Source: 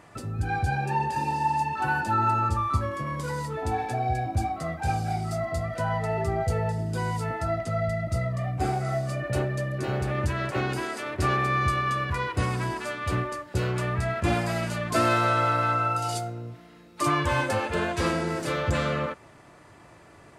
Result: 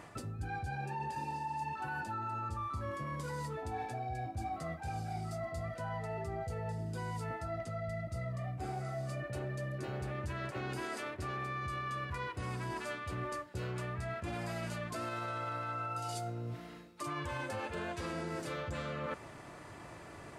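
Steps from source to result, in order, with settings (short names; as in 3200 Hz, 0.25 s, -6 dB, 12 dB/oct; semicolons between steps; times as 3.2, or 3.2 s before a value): limiter -18 dBFS, peak gain reduction 7.5 dB; reverse; compressor 6:1, threshold -39 dBFS, peak gain reduction 16 dB; reverse; gain +1.5 dB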